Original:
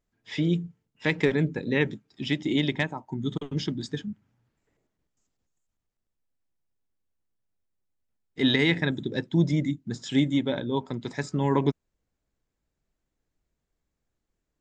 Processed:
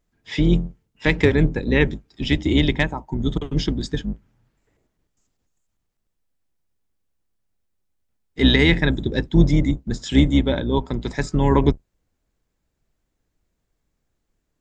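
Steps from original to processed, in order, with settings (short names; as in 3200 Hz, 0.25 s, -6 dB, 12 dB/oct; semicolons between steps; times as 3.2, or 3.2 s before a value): octaver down 2 oct, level -1 dB; gain +6 dB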